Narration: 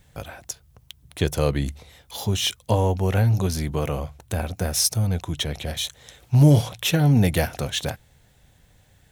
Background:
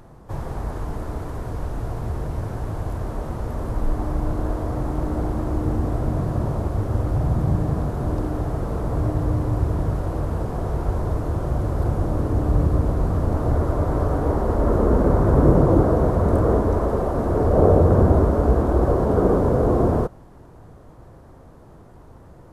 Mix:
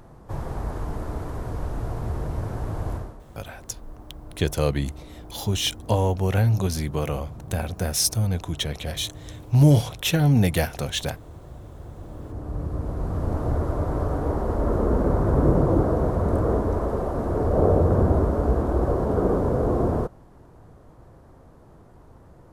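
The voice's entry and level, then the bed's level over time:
3.20 s, -1.0 dB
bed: 2.95 s -1.5 dB
3.21 s -18.5 dB
11.87 s -18.5 dB
13.30 s -4 dB

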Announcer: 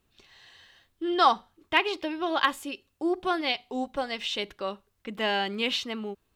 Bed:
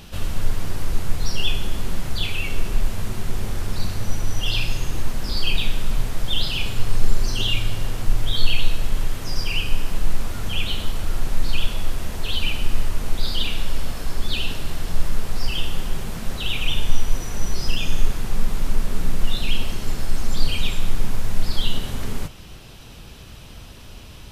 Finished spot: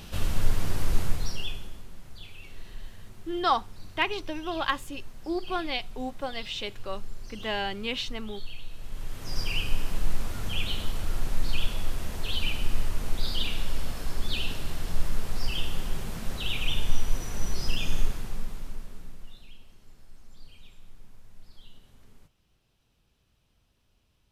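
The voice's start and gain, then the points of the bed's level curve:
2.25 s, -3.5 dB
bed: 1.02 s -2 dB
1.88 s -20.5 dB
8.68 s -20.5 dB
9.39 s -5.5 dB
17.98 s -5.5 dB
19.58 s -29 dB

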